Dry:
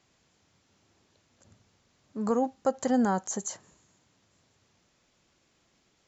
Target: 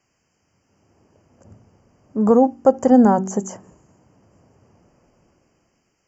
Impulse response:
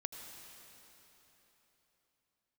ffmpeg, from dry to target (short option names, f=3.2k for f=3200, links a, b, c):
-filter_complex "[0:a]asuperstop=centerf=3800:order=20:qfactor=2.6,acrossover=split=1000[a][b];[a]dynaudnorm=f=220:g=9:m=16.5dB[c];[c][b]amix=inputs=2:normalize=0,bandreject=f=47.48:t=h:w=4,bandreject=f=94.96:t=h:w=4,bandreject=f=142.44:t=h:w=4,bandreject=f=189.92:t=h:w=4,bandreject=f=237.4:t=h:w=4,bandreject=f=284.88:t=h:w=4,bandreject=f=332.36:t=h:w=4,bandreject=f=379.84:t=h:w=4"